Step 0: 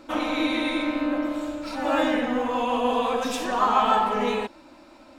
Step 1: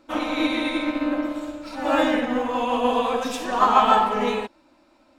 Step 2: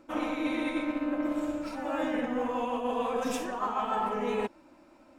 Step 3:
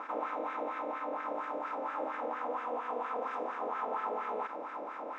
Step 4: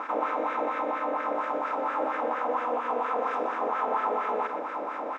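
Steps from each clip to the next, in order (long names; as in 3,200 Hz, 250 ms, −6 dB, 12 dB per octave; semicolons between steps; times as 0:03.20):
expander for the loud parts 1.5 to 1, over −44 dBFS; level +5 dB
graphic EQ with 15 bands 160 Hz +5 dB, 400 Hz +3 dB, 4,000 Hz −8 dB; reversed playback; downward compressor 12 to 1, threshold −27 dBFS, peak gain reduction 17 dB; reversed playback
compressor on every frequency bin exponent 0.2; LFO wah 4.3 Hz 550–1,600 Hz, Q 2.8; high-frequency loss of the air 58 metres; level −6 dB
single-tap delay 123 ms −11 dB; level +7.5 dB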